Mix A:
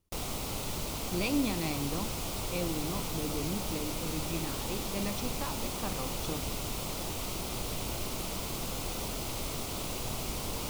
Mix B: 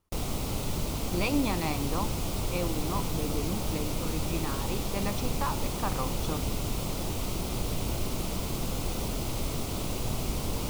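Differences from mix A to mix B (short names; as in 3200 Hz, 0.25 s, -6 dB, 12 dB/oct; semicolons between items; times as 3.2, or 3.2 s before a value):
speech: add bell 1100 Hz +9.5 dB 1.6 oct; background: add low shelf 440 Hz +7.5 dB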